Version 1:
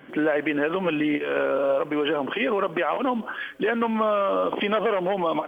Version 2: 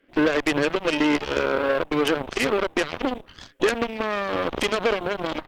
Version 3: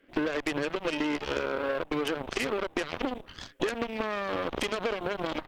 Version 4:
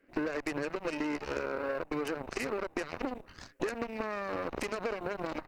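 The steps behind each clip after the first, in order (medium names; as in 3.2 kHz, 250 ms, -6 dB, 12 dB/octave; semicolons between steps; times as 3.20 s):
static phaser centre 360 Hz, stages 4; Chebyshev shaper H 3 -10 dB, 5 -11 dB, 7 -13 dB, 8 -25 dB, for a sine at -13 dBFS; trim +7 dB
compression, threshold -26 dBFS, peak gain reduction 10.5 dB
peaking EQ 3.3 kHz -15 dB 0.28 oct; trim -4 dB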